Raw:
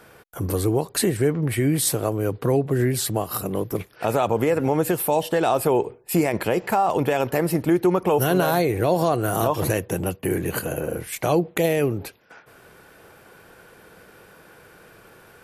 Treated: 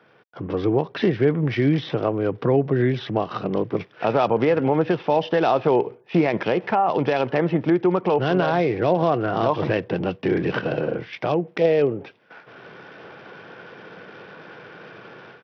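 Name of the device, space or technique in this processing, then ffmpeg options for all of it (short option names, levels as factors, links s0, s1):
Bluetooth headset: -filter_complex "[0:a]asettb=1/sr,asplit=3[s0][s1][s2];[s0]atrim=end=11.614[s3];[s1]atrim=start=11.61:end=12.03,asetpts=PTS-STARTPTS,afade=t=in:d=0.004:c=qsin,afade=t=out:st=0.416:d=0.004:c=qsin,equalizer=f=490:t=o:w=0.82:g=8[s4];[s2]atrim=start=12.026[s5];[s3][s4]acrossfade=d=0.004:c1=hsin:c2=qsin[s6];[s6][s5]acrossfade=d=0.004:c1=qsin:c2=hsin,highpass=f=120:w=0.5412,highpass=f=120:w=1.3066,dynaudnorm=f=300:g=3:m=5.01,aresample=8000,aresample=44100,volume=0.473" -ar 44100 -c:a sbc -b:a 64k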